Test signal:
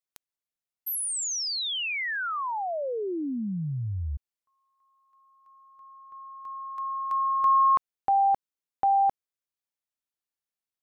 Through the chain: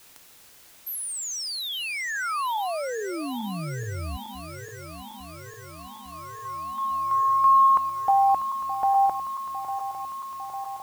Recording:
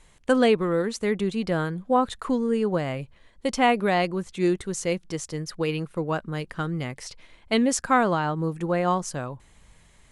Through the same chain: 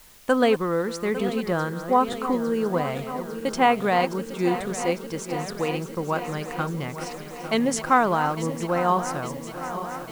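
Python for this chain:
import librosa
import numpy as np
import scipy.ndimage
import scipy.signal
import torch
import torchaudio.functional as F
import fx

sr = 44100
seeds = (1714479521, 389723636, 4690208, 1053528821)

p1 = fx.reverse_delay_fb(x, sr, ms=426, feedback_pct=83, wet_db=-12)
p2 = fx.peak_eq(p1, sr, hz=1000.0, db=5.5, octaves=1.4)
p3 = fx.quant_dither(p2, sr, seeds[0], bits=6, dither='triangular')
p4 = p2 + (p3 * 10.0 ** (-12.0 / 20.0))
y = p4 * 10.0 ** (-4.0 / 20.0)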